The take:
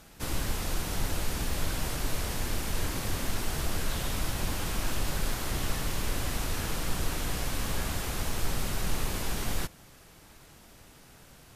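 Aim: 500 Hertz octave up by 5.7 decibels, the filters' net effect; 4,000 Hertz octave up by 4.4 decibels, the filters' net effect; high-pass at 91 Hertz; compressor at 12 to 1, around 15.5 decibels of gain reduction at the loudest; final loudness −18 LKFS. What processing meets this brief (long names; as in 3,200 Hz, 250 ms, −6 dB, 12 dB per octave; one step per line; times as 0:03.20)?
high-pass filter 91 Hz
parametric band 500 Hz +7 dB
parametric band 4,000 Hz +5.5 dB
downward compressor 12 to 1, threshold −45 dBFS
level +29.5 dB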